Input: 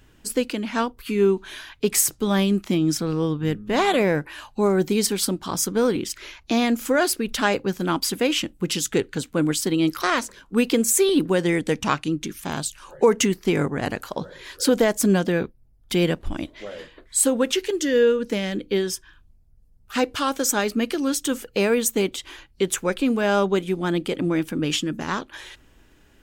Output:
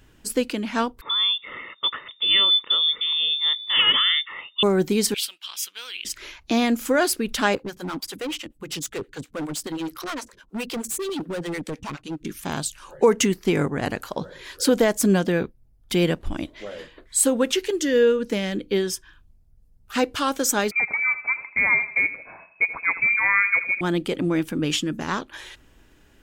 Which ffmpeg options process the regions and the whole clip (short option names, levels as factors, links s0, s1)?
-filter_complex "[0:a]asettb=1/sr,asplit=3[s0][s1][s2];[s0]atrim=end=1.014[s3];[s1]atrim=start=1.01:end=4.63,asetpts=PTS-STARTPTS,afade=t=in:d=0.004:c=qsin,afade=t=out:st=3.616:d=0.004:c=qsin,highpass=59,aecho=1:1:1.2:0.8,atrim=end_sample=159642,lowpass=f=3100:t=q:w=0.5098,lowpass=f=3100:t=q:w=0.6013,lowpass=f=3100:t=q:w=0.9,lowpass=f=3100:t=q:w=2.563,afreqshift=-3700[s4];[s2]atrim=start=4.626[s5];[s3][s4]acrossfade=d=0.004:c1=hsin:c2=qsin[s6];[s6][s5]acrossfade=d=0.004:c1=qsin:c2=hsin,asettb=1/sr,asplit=3[s7][s8][s9];[s7]atrim=end=5.144[s10];[s8]atrim=start=5.14:end=6.05,asetpts=PTS-STARTPTS,afade=t=in:d=0.004:c=qsin,afade=t=out:st=0.906:d=0.004:c=qsin,highpass=f=2800:t=q:w=4.2,equalizer=f=7100:w=0.67:g=-8[s11];[s9]atrim=start=6.046[s12];[s10][s11]acrossfade=d=0.004:c1=hsin:c2=qsin[s13];[s13][s12]acrossfade=d=0.004:c1=qsin:c2=hsin,asettb=1/sr,asplit=3[s14][s15][s16];[s14]atrim=end=7.554[s17];[s15]atrim=start=7.55:end=12.25,asetpts=PTS-STARTPTS,afade=t=in:d=0.004:c=qsin,afade=t=out:st=4.696:d=0.004:c=qsin,acrossover=split=450[s18][s19];[s18]aeval=exprs='val(0)*(1-1/2+1/2*cos(2*PI*9.6*n/s))':c=same[s20];[s19]aeval=exprs='val(0)*(1-1/2-1/2*cos(2*PI*9.6*n/s))':c=same[s21];[s20][s21]amix=inputs=2:normalize=0,asoftclip=type=hard:threshold=0.0501[s22];[s16]atrim=start=12.246[s23];[s17][s22]acrossfade=d=0.004:c1=hsin:c2=qsin[s24];[s24][s23]acrossfade=d=0.004:c1=qsin:c2=hsin,asettb=1/sr,asplit=3[s25][s26][s27];[s25]atrim=end=20.714[s28];[s26]atrim=start=20.71:end=23.81,asetpts=PTS-STARTPTS,afade=t=in:d=0.004:c=qsin,afade=t=out:st=3.096:d=0.004:c=qsin,aecho=1:1:81|162|243|324:0.2|0.0838|0.0352|0.0148,atrim=end_sample=136710,lowpass=f=2200:t=q:w=0.5098,lowpass=f=2200:t=q:w=0.6013,lowpass=f=2200:t=q:w=0.9,lowpass=f=2200:t=q:w=2.563,afreqshift=-2600[s29];[s27]atrim=start=23.806[s30];[s28][s29]acrossfade=d=0.004:c1=hsin:c2=qsin[s31];[s31][s30]acrossfade=d=0.004:c1=qsin:c2=hsin"